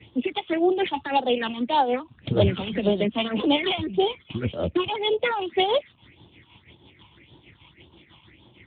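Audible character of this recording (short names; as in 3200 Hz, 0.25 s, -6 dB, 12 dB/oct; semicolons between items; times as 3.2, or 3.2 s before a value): a buzz of ramps at a fixed pitch in blocks of 8 samples; phasing stages 6, 1.8 Hz, lowest notch 470–2200 Hz; tremolo triangle 6.3 Hz, depth 65%; AMR-NB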